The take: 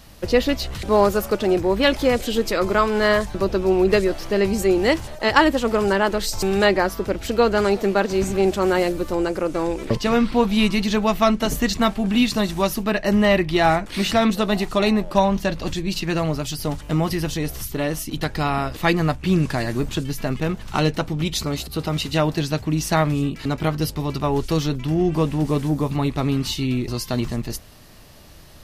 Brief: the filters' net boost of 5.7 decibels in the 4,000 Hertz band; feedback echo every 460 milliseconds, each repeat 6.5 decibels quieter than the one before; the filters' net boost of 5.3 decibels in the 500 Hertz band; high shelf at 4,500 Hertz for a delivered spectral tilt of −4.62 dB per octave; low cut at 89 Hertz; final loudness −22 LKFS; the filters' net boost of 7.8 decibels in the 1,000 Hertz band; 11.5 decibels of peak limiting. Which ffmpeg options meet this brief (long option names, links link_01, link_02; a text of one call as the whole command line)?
ffmpeg -i in.wav -af "highpass=89,equalizer=frequency=500:width_type=o:gain=4.5,equalizer=frequency=1000:width_type=o:gain=8,equalizer=frequency=4000:width_type=o:gain=3.5,highshelf=frequency=4500:gain=6,alimiter=limit=-6.5dB:level=0:latency=1,aecho=1:1:460|920|1380|1840|2300|2760:0.473|0.222|0.105|0.0491|0.0231|0.0109,volume=-4.5dB" out.wav